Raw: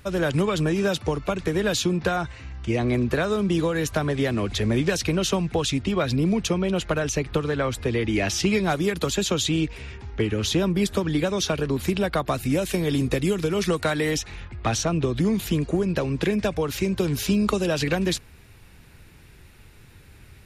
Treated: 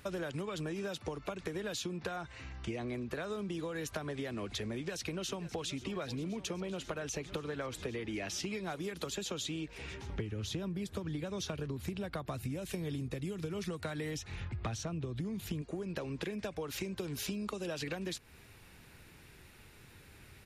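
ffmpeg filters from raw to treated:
-filter_complex "[0:a]asplit=2[a][b];[b]afade=t=in:st=4.75:d=0.01,afade=t=out:st=5.79:d=0.01,aecho=0:1:530|1060|1590|2120|2650|3180|3710|4240|4770|5300|5830|6360:0.141254|0.120066|0.102056|0.0867475|0.0737353|0.062675|0.0532738|0.0452827|0.0384903|0.0327168|0.0278092|0.0236379[c];[a][c]amix=inputs=2:normalize=0,asettb=1/sr,asplit=3[d][e][f];[d]atrim=end=10.094[g];[e]atrim=start=10.09:end=15.62,asetpts=PTS-STARTPTS,afade=t=in:d=0.004:c=qsin,afade=t=out:st=5.526:d=0.004:c=qsin,equalizer=f=100:w=0.78:g=12.5[h];[f]atrim=start=15.616[i];[g][h]acrossfade=d=0.004:c1=hsin:c2=qsin[j];[j][i]acrossfade=d=0.004:c1=qsin:c2=hsin,lowshelf=f=120:g=-9,acompressor=threshold=-32dB:ratio=10,volume=-3.5dB"

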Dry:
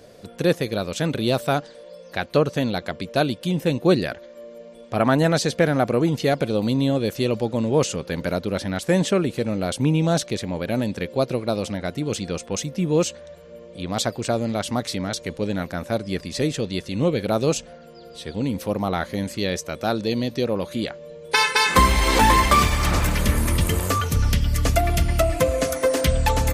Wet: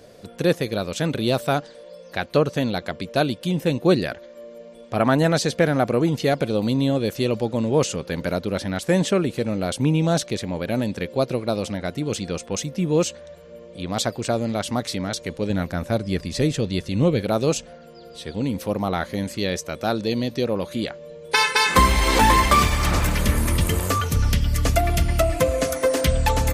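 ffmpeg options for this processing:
-filter_complex "[0:a]asettb=1/sr,asplit=3[a][b][c];[a]atrim=end=15.504[d];[b]atrim=start=15.5:end=17.22,asetpts=PTS-STARTPTS,afade=t=in:d=0.004:c=qsin,afade=t=out:st=1.716:d=0.004:c=qsin,lowshelf=f=140:g=8.5[e];[c]atrim=start=17.216[f];[d][e]acrossfade=d=0.004:c1=hsin:c2=qsin[g];[g][f]acrossfade=d=0.004:c1=qsin:c2=hsin"

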